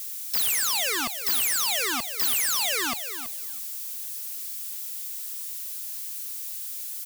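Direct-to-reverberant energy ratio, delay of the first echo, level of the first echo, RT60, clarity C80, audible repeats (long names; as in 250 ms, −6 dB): no reverb audible, 328 ms, −11.0 dB, no reverb audible, no reverb audible, 2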